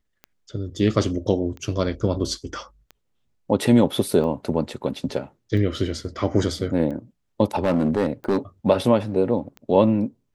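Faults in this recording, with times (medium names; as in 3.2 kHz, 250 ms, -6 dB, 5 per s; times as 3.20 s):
tick 45 rpm -24 dBFS
7.55–8.38 s: clipped -15 dBFS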